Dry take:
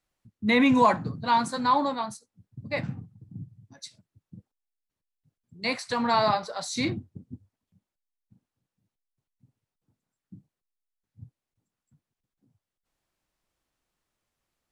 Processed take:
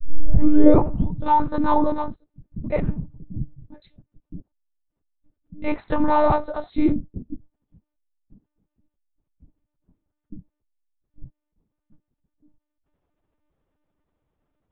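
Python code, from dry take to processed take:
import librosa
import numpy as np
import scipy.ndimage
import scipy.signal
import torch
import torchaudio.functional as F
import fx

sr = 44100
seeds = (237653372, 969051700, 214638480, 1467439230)

y = fx.tape_start_head(x, sr, length_s=1.39)
y = fx.tilt_shelf(y, sr, db=10.0, hz=1200.0)
y = fx.lpc_monotone(y, sr, seeds[0], pitch_hz=300.0, order=10)
y = F.gain(torch.from_numpy(y), 2.0).numpy()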